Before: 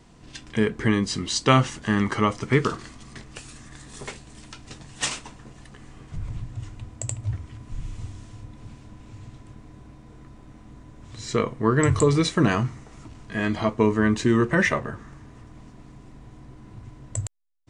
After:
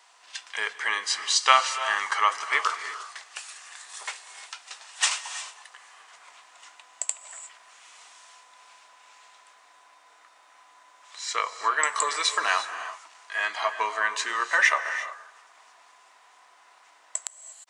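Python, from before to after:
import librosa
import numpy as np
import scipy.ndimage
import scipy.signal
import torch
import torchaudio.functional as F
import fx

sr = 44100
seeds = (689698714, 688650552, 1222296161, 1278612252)

y = scipy.signal.sosfilt(scipy.signal.butter(4, 810.0, 'highpass', fs=sr, output='sos'), x)
y = fx.rev_gated(y, sr, seeds[0], gate_ms=380, shape='rising', drr_db=10.0)
y = F.gain(torch.from_numpy(y), 3.5).numpy()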